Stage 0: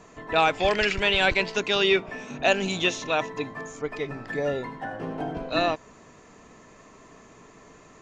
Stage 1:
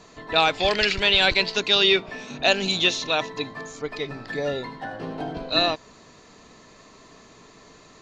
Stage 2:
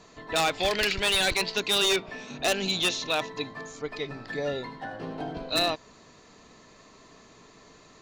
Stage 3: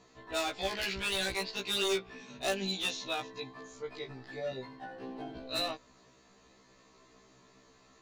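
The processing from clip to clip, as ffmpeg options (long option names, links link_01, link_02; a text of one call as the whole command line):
ffmpeg -i in.wav -af "equalizer=frequency=4200:width=2.1:gain=12.5" out.wav
ffmpeg -i in.wav -af "aeval=exprs='0.2*(abs(mod(val(0)/0.2+3,4)-2)-1)':channel_layout=same,volume=-3.5dB" out.wav
ffmpeg -i in.wav -af "afftfilt=real='re*1.73*eq(mod(b,3),0)':imag='im*1.73*eq(mod(b,3),0)':win_size=2048:overlap=0.75,volume=-6dB" out.wav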